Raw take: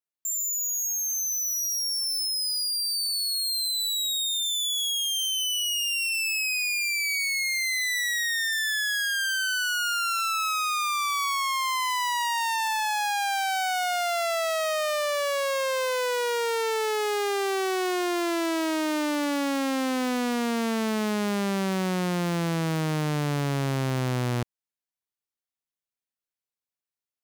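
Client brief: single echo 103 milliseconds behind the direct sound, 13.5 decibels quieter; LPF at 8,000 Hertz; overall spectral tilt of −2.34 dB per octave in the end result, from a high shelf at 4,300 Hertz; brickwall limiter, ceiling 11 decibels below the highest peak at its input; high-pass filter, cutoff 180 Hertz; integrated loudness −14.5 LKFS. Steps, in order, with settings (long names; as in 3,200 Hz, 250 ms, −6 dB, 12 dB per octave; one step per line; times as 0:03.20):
high-pass filter 180 Hz
low-pass filter 8,000 Hz
high-shelf EQ 4,300 Hz +3 dB
brickwall limiter −25.5 dBFS
single-tap delay 103 ms −13.5 dB
level +15.5 dB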